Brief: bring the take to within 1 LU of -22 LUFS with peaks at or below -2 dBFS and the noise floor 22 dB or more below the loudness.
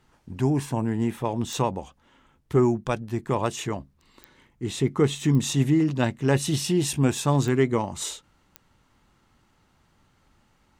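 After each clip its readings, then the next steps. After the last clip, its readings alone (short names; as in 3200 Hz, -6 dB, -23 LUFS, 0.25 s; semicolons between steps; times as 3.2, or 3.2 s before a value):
clicks 5; loudness -25.0 LUFS; peak -9.0 dBFS; loudness target -22.0 LUFS
-> de-click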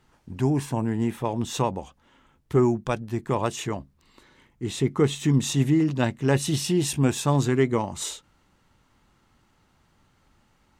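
clicks 0; loudness -25.0 LUFS; peak -9.0 dBFS; loudness target -22.0 LUFS
-> gain +3 dB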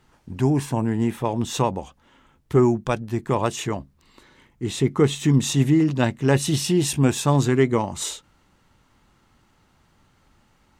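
loudness -22.0 LUFS; peak -6.0 dBFS; noise floor -62 dBFS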